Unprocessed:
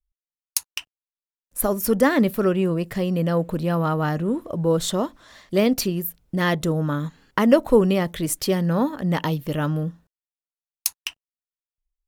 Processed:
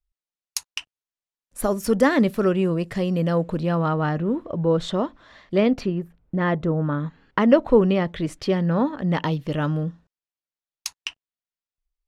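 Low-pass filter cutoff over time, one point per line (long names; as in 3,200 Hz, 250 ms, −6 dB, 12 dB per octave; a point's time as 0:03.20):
0:03.25 7,900 Hz
0:04.18 3,400 Hz
0:05.55 3,400 Hz
0:06.02 1,700 Hz
0:06.69 1,700 Hz
0:07.40 3,400 Hz
0:08.82 3,400 Hz
0:09.55 5,600 Hz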